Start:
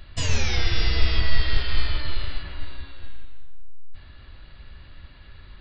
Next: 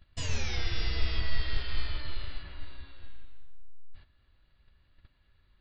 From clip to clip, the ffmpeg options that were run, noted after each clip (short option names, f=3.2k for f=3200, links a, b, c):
-af "agate=range=-12dB:threshold=-37dB:ratio=16:detection=peak,volume=-9dB"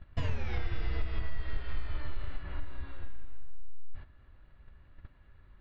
-af "lowpass=1.7k,acompressor=threshold=-36dB:ratio=4,volume=9dB"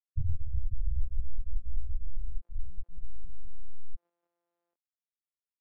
-filter_complex "[0:a]afftfilt=real='re*gte(hypot(re,im),0.251)':imag='im*gte(hypot(re,im),0.251)':win_size=1024:overlap=0.75,acrossover=split=460[a][b];[b]adelay=790[c];[a][c]amix=inputs=2:normalize=0,volume=4dB"